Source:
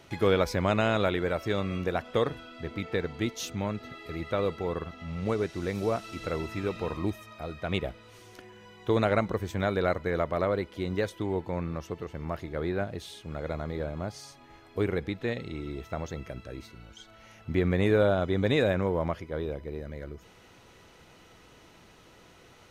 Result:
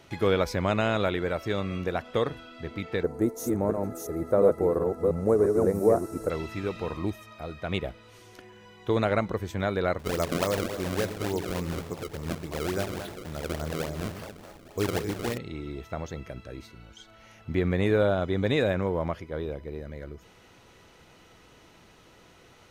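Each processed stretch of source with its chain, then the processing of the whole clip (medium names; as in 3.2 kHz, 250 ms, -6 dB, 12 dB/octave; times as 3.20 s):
3.03–6.30 s: chunks repeated in reverse 347 ms, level -3 dB + FFT filter 150 Hz 0 dB, 480 Hz +9 dB, 1.7 kHz -5 dB, 3.1 kHz -25 dB, 9.3 kHz +10 dB
9.99–15.38 s: two-band feedback delay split 410 Hz, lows 117 ms, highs 215 ms, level -7.5 dB + decimation with a swept rate 29×, swing 160% 3.5 Hz
whole clip: none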